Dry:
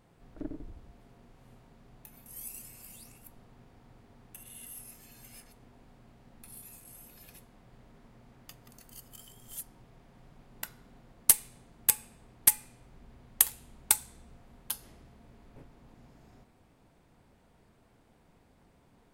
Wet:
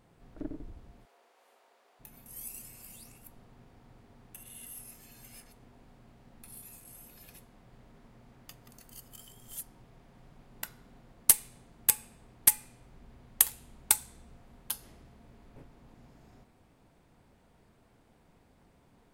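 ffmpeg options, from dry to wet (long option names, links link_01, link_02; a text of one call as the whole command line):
ffmpeg -i in.wav -filter_complex "[0:a]asplit=3[link_01][link_02][link_03];[link_01]afade=type=out:start_time=1.04:duration=0.02[link_04];[link_02]highpass=frequency=470:width=0.5412,highpass=frequency=470:width=1.3066,afade=type=in:start_time=1.04:duration=0.02,afade=type=out:start_time=1.99:duration=0.02[link_05];[link_03]afade=type=in:start_time=1.99:duration=0.02[link_06];[link_04][link_05][link_06]amix=inputs=3:normalize=0" out.wav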